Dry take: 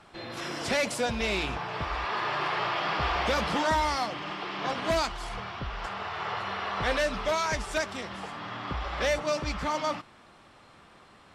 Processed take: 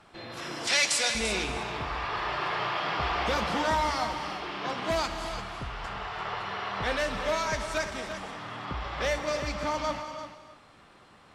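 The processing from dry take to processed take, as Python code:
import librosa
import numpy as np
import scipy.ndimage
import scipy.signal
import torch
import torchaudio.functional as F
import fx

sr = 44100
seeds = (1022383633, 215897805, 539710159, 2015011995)

p1 = fx.weighting(x, sr, curve='ITU-R 468', at=(0.67, 1.15))
p2 = p1 + fx.echo_single(p1, sr, ms=341, db=-10.5, dry=0)
p3 = fx.rev_gated(p2, sr, seeds[0], gate_ms=340, shape='flat', drr_db=7.5)
y = p3 * librosa.db_to_amplitude(-2.0)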